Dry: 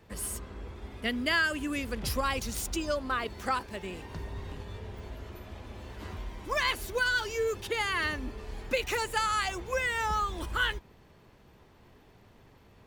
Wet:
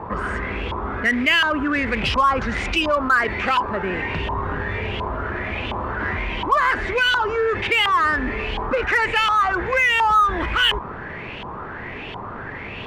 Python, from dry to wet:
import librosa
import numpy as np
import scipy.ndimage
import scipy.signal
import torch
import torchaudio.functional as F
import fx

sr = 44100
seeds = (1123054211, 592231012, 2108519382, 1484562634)

p1 = scipy.signal.sosfilt(scipy.signal.butter(6, 9700.0, 'lowpass', fs=sr, output='sos'), x)
p2 = fx.low_shelf(p1, sr, hz=100.0, db=-6.5)
p3 = fx.quant_float(p2, sr, bits=2)
p4 = fx.filter_lfo_lowpass(p3, sr, shape='saw_up', hz=1.4, low_hz=960.0, high_hz=3100.0, q=6.0)
p5 = 10.0 ** (-30.5 / 20.0) * np.tanh(p4 / 10.0 ** (-30.5 / 20.0))
p6 = p4 + (p5 * 10.0 ** (-4.0 / 20.0))
y = fx.env_flatten(p6, sr, amount_pct=50)